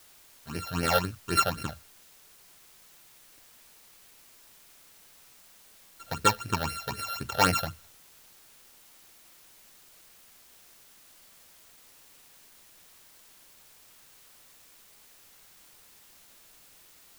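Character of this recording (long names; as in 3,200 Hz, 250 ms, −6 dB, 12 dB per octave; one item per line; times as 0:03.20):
a buzz of ramps at a fixed pitch in blocks of 32 samples
phaser sweep stages 8, 3.9 Hz, lowest notch 290–1,100 Hz
a quantiser's noise floor 10 bits, dither triangular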